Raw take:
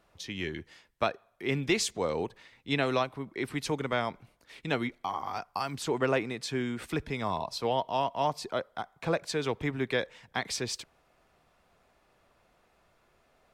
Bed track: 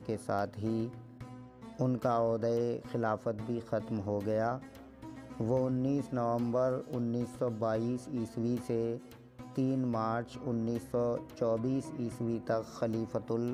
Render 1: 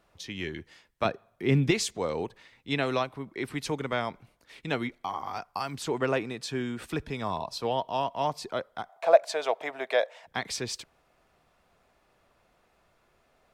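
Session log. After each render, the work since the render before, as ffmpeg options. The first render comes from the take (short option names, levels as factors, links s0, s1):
-filter_complex "[0:a]asettb=1/sr,asplit=3[s0][s1][s2];[s0]atrim=end=1.054[s3];[s1]atrim=start=1.05:end=1.71,asetpts=PTS-STARTPTS,afade=t=in:d=0.004:c=qsin,afade=t=out:st=0.656:d=0.004:c=qsin,equalizer=f=140:t=o:w=2.9:g=10[s4];[s2]atrim=start=1.706[s5];[s3][s4]acrossfade=d=0.004:c1=hsin:c2=qsin[s6];[s6][s5]acrossfade=d=0.004:c1=qsin:c2=hsin,asettb=1/sr,asplit=3[s7][s8][s9];[s7]atrim=end=6.164[s10];[s8]atrim=start=6.16:end=8.11,asetpts=PTS-STARTPTS,afade=t=in:d=0.004:c=qsin,afade=t=out:st=1.946:d=0.004:c=qsin,bandreject=f=2100:w=12[s11];[s9]atrim=start=8.106[s12];[s10][s11]acrossfade=d=0.004:c1=hsin:c2=qsin[s13];[s13][s12]acrossfade=d=0.004:c1=qsin:c2=hsin,asettb=1/sr,asplit=3[s14][s15][s16];[s14]atrim=end=8.894[s17];[s15]atrim=start=8.89:end=10.27,asetpts=PTS-STARTPTS,afade=t=in:d=0.004:c=qsin,afade=t=out:st=1.376:d=0.004:c=qsin,highpass=f=650:t=q:w=7.6[s18];[s16]atrim=start=10.266[s19];[s17][s18]acrossfade=d=0.004:c1=hsin:c2=qsin[s20];[s20][s19]acrossfade=d=0.004:c1=qsin:c2=hsin"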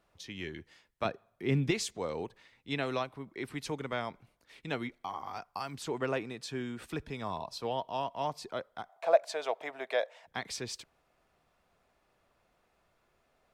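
-af "volume=0.531"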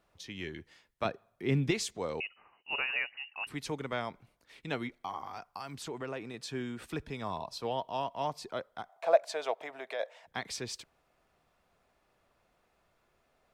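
-filter_complex "[0:a]asettb=1/sr,asplit=3[s0][s1][s2];[s0]atrim=end=2.204[s3];[s1]atrim=start=2.2:end=3.47,asetpts=PTS-STARTPTS,afade=t=in:d=0.004:c=qsin,afade=t=out:st=1.266:d=0.004:c=qsin,lowpass=f=2600:t=q:w=0.5098,lowpass=f=2600:t=q:w=0.6013,lowpass=f=2600:t=q:w=0.9,lowpass=f=2600:t=q:w=2.563,afreqshift=-3000[s4];[s2]atrim=start=3.466[s5];[s3][s4]acrossfade=d=0.004:c1=hsin:c2=qsin[s6];[s6][s5]acrossfade=d=0.004:c1=qsin:c2=hsin,asettb=1/sr,asplit=3[s7][s8][s9];[s7]atrim=end=5.244[s10];[s8]atrim=start=5.24:end=6.34,asetpts=PTS-STARTPTS,afade=t=in:d=0.004:c=qsin,afade=t=out:st=1.096:d=0.004:c=qsin,acompressor=threshold=0.0112:ratio=2:attack=3.2:release=140:knee=1:detection=peak[s11];[s9]atrim=start=6.336[s12];[s10][s11]acrossfade=d=0.004:c1=hsin:c2=qsin[s13];[s13][s12]acrossfade=d=0.004:c1=qsin:c2=hsin,asplit=3[s14][s15][s16];[s14]afade=t=out:st=9.54:d=0.02[s17];[s15]acompressor=threshold=0.0112:ratio=2:attack=3.2:release=140:knee=1:detection=peak,afade=t=in:st=9.54:d=0.02,afade=t=out:st=9.99:d=0.02[s18];[s16]afade=t=in:st=9.99:d=0.02[s19];[s17][s18][s19]amix=inputs=3:normalize=0"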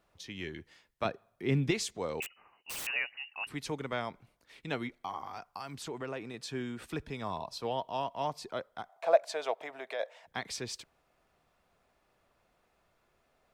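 -filter_complex "[0:a]asettb=1/sr,asplit=3[s0][s1][s2];[s0]atrim=end=2.224[s3];[s1]atrim=start=2.22:end=2.87,asetpts=PTS-STARTPTS,afade=t=in:d=0.004:c=qsin,afade=t=out:st=0.646:d=0.004:c=qsin,aeval=exprs='(mod(56.2*val(0)+1,2)-1)/56.2':c=same[s4];[s2]atrim=start=2.866[s5];[s3][s4]acrossfade=d=0.004:c1=hsin:c2=qsin[s6];[s6][s5]acrossfade=d=0.004:c1=qsin:c2=hsin"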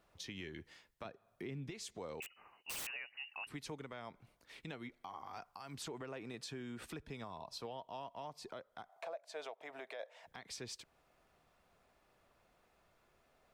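-af "acompressor=threshold=0.00708:ratio=2.5,alimiter=level_in=3.76:limit=0.0631:level=0:latency=1:release=270,volume=0.266"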